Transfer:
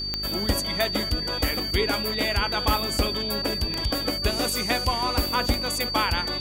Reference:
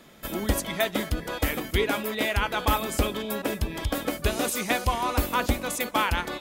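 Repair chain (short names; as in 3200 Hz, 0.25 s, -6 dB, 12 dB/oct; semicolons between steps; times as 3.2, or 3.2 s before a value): de-click; de-hum 50.5 Hz, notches 8; notch 4600 Hz, Q 30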